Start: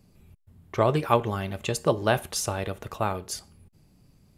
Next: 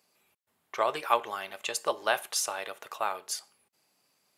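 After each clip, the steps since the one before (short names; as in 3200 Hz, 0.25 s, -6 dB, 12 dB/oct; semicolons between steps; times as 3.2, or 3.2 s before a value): HPF 780 Hz 12 dB/oct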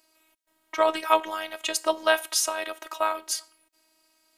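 robotiser 318 Hz; gain +7.5 dB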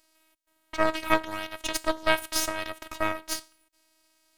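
half-wave rectifier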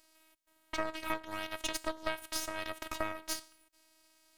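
compressor 10:1, threshold -30 dBFS, peak gain reduction 16 dB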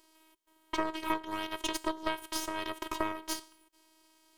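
small resonant body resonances 370/1000/3100 Hz, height 14 dB, ringing for 45 ms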